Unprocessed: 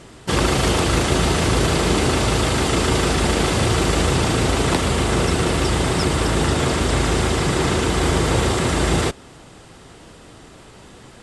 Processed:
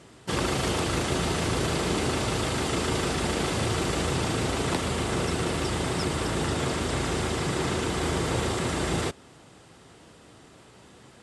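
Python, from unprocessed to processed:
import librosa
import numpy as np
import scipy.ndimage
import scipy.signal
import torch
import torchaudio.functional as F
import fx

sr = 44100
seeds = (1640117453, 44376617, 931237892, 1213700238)

y = scipy.signal.sosfilt(scipy.signal.butter(2, 73.0, 'highpass', fs=sr, output='sos'), x)
y = F.gain(torch.from_numpy(y), -8.0).numpy()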